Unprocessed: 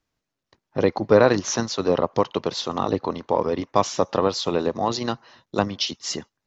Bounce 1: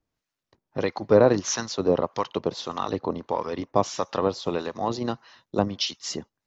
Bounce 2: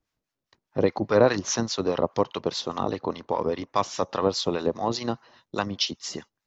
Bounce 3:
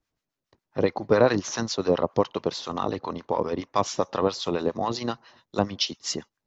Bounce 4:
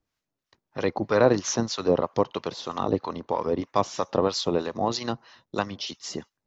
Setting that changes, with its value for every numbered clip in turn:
two-band tremolo in antiphase, speed: 1.6, 4.9, 7.3, 3.1 Hertz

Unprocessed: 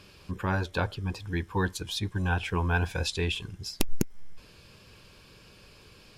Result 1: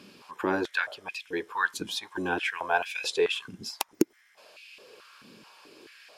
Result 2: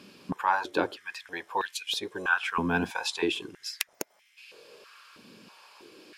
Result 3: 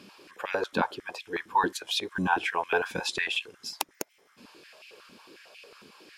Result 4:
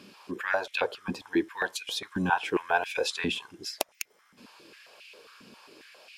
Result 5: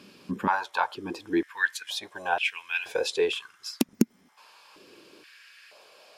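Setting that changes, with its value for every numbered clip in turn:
high-pass on a step sequencer, speed: 4.6, 3.1, 11, 7.4, 2.1 Hertz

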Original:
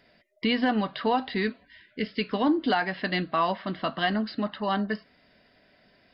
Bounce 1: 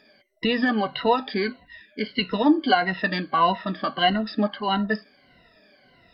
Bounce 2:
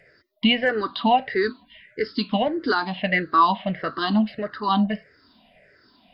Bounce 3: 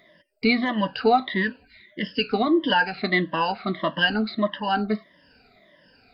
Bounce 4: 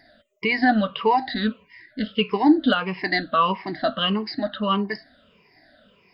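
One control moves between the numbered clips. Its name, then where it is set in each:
rippled gain that drifts along the octave scale, ripples per octave: 2, 0.51, 1.2, 0.77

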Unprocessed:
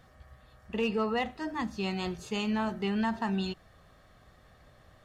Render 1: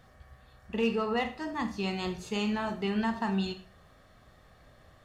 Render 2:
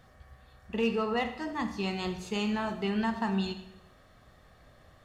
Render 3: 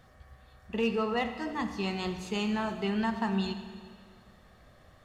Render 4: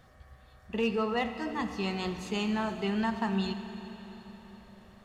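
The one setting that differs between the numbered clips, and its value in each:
four-comb reverb, RT60: 0.38, 0.81, 1.9, 4.2 seconds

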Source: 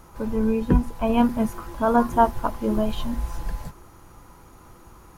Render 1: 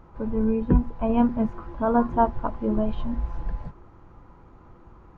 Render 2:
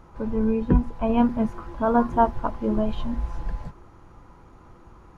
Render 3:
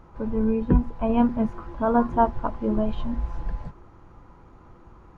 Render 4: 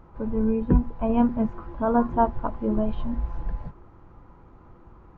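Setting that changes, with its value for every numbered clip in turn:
head-to-tape spacing loss, at 10 kHz: 38, 20, 30, 46 decibels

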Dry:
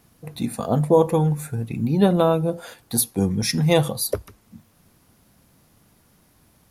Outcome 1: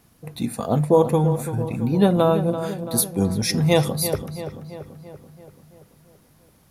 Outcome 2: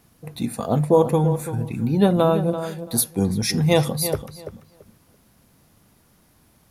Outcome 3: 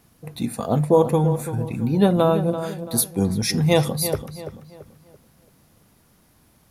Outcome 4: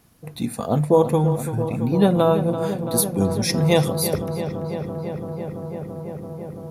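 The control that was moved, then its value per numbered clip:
feedback echo with a low-pass in the loop, feedback: 59, 19, 37, 88%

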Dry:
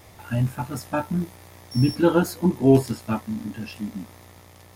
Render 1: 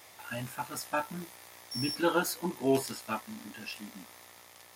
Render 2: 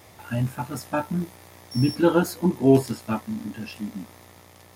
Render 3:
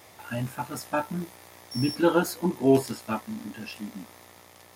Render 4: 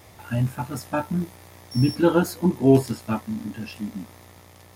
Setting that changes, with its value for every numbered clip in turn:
high-pass filter, corner frequency: 1,200, 120, 390, 43 Hertz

